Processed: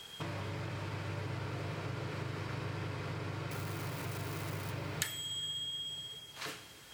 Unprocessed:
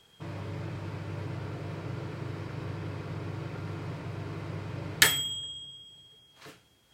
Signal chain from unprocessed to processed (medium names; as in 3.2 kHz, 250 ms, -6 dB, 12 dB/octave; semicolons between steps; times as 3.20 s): 3.51–4.72 s: zero-crossing glitches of -39.5 dBFS; tilt shelf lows -3.5 dB, about 780 Hz; compression 6:1, threshold -46 dBFS, peak gain reduction 30.5 dB; reverberation RT60 4.7 s, pre-delay 52 ms, DRR 12 dB; trim +8.5 dB